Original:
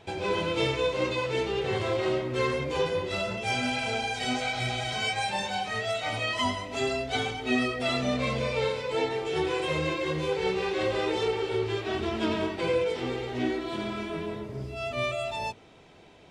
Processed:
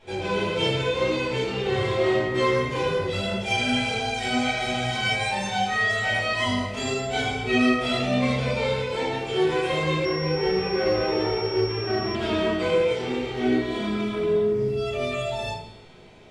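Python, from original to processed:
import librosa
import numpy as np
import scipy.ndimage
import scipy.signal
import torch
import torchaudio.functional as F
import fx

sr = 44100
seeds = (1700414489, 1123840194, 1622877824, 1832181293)

y = fx.comb_fb(x, sr, f0_hz=210.0, decay_s=1.4, harmonics='all', damping=0.0, mix_pct=80)
y = fx.room_shoebox(y, sr, seeds[0], volume_m3=91.0, walls='mixed', distance_m=2.3)
y = fx.pwm(y, sr, carrier_hz=5500.0, at=(10.05, 12.15))
y = y * librosa.db_to_amplitude(7.0)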